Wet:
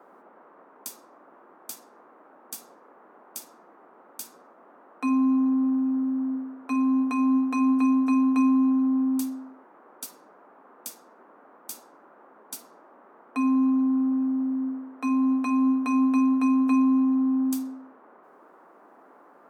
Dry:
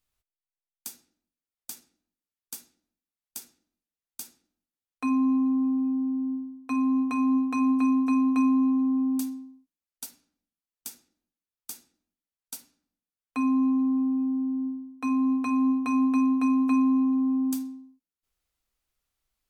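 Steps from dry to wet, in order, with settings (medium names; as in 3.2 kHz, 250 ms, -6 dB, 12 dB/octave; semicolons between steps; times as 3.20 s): band noise 230–1300 Hz -55 dBFS; elliptic high-pass 160 Hz; trim +2 dB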